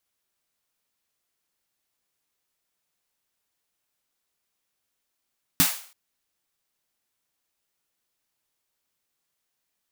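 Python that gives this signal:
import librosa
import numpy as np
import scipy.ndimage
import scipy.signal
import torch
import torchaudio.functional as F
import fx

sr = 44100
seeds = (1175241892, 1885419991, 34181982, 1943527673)

y = fx.drum_snare(sr, seeds[0], length_s=0.33, hz=170.0, second_hz=270.0, noise_db=3.5, noise_from_hz=680.0, decay_s=0.12, noise_decay_s=0.46)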